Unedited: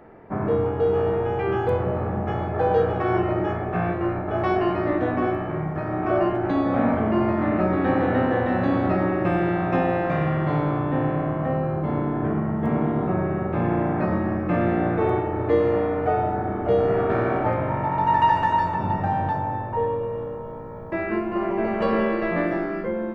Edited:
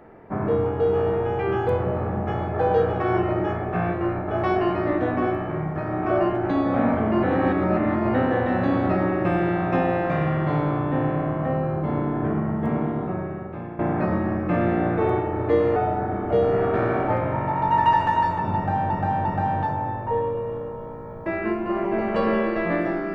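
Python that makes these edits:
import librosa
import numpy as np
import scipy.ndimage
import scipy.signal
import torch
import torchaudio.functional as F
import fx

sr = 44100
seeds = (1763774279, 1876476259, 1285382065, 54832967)

y = fx.edit(x, sr, fx.reverse_span(start_s=7.23, length_s=0.91),
    fx.fade_out_to(start_s=12.52, length_s=1.27, floor_db=-15.0),
    fx.cut(start_s=15.76, length_s=0.36),
    fx.repeat(start_s=18.91, length_s=0.35, count=3), tone=tone)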